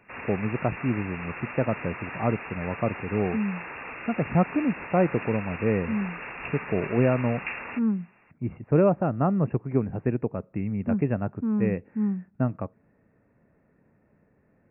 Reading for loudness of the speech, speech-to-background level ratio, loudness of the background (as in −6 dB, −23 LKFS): −27.5 LKFS, 9.5 dB, −37.0 LKFS